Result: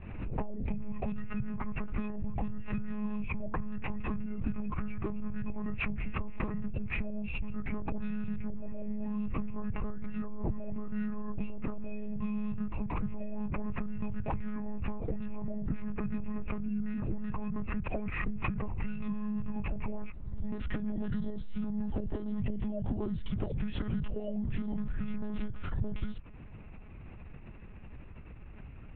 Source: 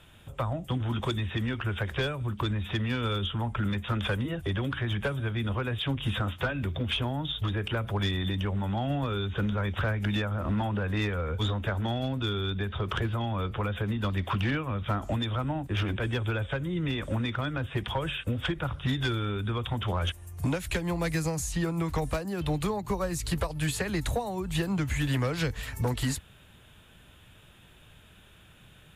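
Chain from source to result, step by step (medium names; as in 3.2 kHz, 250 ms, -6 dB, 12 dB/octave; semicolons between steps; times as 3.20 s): tilt shelf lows +8 dB, about 770 Hz; compression, threshold -32 dBFS, peak gain reduction 14 dB; formant shift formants -5 st; monotone LPC vocoder at 8 kHz 210 Hz; swell ahead of each attack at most 50 dB/s; trim +1.5 dB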